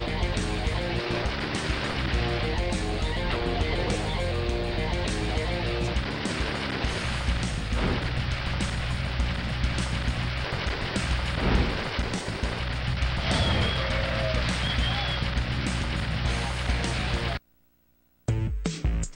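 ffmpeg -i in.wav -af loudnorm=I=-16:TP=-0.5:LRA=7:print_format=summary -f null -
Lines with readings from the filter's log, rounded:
Input Integrated:    -28.2 LUFS
Input True Peak:     -10.7 dBTP
Input LRA:             3.2 LU
Input Threshold:     -38.4 LUFS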